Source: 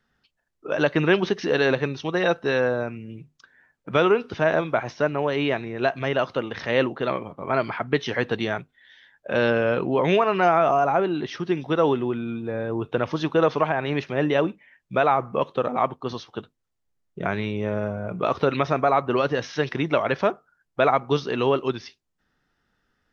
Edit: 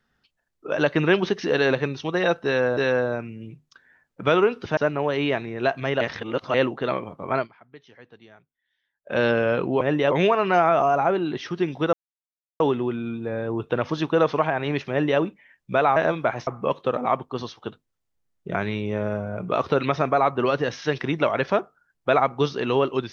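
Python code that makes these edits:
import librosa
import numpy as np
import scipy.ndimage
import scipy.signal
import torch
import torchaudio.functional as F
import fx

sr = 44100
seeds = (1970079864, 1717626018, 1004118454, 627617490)

y = fx.edit(x, sr, fx.repeat(start_s=2.45, length_s=0.32, count=2),
    fx.move(start_s=4.45, length_s=0.51, to_s=15.18),
    fx.reverse_span(start_s=6.2, length_s=0.53),
    fx.fade_down_up(start_s=7.51, length_s=1.87, db=-24.0, fade_s=0.16, curve='qsin'),
    fx.insert_silence(at_s=11.82, length_s=0.67),
    fx.duplicate(start_s=14.12, length_s=0.3, to_s=10.0), tone=tone)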